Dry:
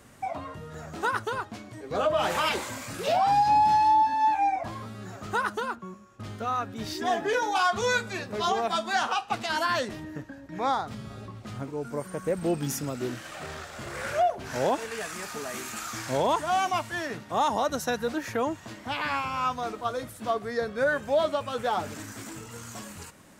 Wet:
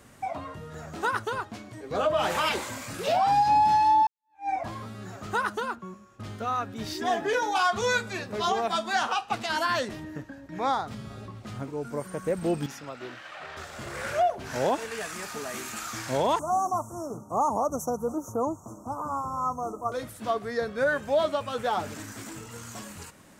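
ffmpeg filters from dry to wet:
-filter_complex "[0:a]asettb=1/sr,asplit=3[a][b][c];[a]atrim=end=12.664[d];[b]atrim=start=12.66:end=13.57,asetpts=PTS-STARTPTS,afade=t=in:d=0.004:c=qsin,afade=t=out:st=0.906:d=0.004:c=qsin,acrossover=split=550 4300:gain=0.224 1 0.126[e][f][g];[e][f][g]amix=inputs=3:normalize=0[h];[c]atrim=start=13.566[i];[d][h]acrossfade=d=0.004:c1=hsin:c2=qsin[j];[j][i]acrossfade=d=0.004:c1=qsin:c2=hsin,asettb=1/sr,asplit=3[k][l][m];[k]atrim=end=16.394[n];[l]atrim=start=16.39:end=19.92,asetpts=PTS-STARTPTS,afade=t=in:d=0.004:c=qsin,afade=t=out:st=3.526:d=0.004:c=qsin,asuperstop=centerf=2800:order=20:qfactor=0.62[o];[m]atrim=start=19.916[p];[n][o]acrossfade=d=0.004:c1=hsin:c2=qsin[q];[q][p]acrossfade=d=0.004:c1=qsin:c2=hsin,asplit=2[r][s];[r]atrim=end=4.07,asetpts=PTS-STARTPTS,afade=t=out:st=4.066:d=0.004:c=hsin[t];[s]atrim=start=4.07,asetpts=PTS-STARTPTS,afade=t=in:d=0.43:c=exp[u];[t][u]concat=n=2:v=0:a=1"

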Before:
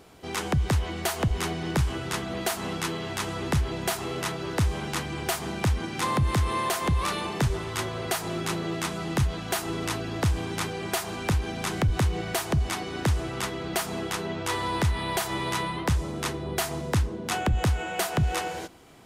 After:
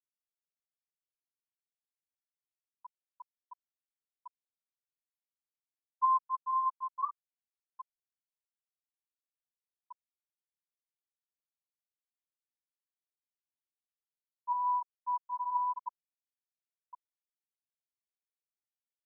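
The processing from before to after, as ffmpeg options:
-filter_complex "[0:a]asettb=1/sr,asplit=3[a][b][c];[a]atrim=end=6.534[d];[b]atrim=start=6.53:end=7.26,asetpts=PTS-STARTPTS,afade=t=in:d=0.004:c=qsin,afade=t=out:st=0.726:d=0.004:c=qsin,aecho=1:1:7.1:0.36,atrim=end_sample=32193[e];[c]atrim=start=7.256[f];[d][e]acrossfade=d=0.004:c1=hsin:c2=qsin[g];[g][f]acrossfade=d=0.004:c1=qsin:c2=hsin,lowpass=1.4k,lowshelf=f=670:t=q:w=3:g=-12,afftfilt=real='re*gte(hypot(re,im),0.398)':imag='im*gte(hypot(re,im),0.398)':win_size=1024:overlap=0.75,volume=-2.5dB"

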